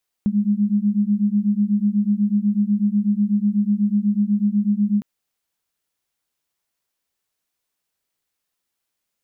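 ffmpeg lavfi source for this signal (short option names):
-f lavfi -i "aevalsrc='0.112*(sin(2*PI*202*t)+sin(2*PI*210.1*t))':d=4.76:s=44100"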